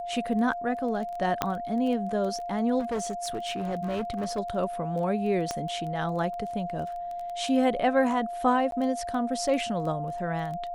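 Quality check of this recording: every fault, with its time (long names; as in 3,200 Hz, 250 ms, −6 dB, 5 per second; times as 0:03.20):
surface crackle 13 per second −33 dBFS
whistle 700 Hz −32 dBFS
0:01.42: click −10 dBFS
0:02.79–0:04.39: clipping −26 dBFS
0:05.51: click −16 dBFS
0:08.71–0:08.72: drop-out 12 ms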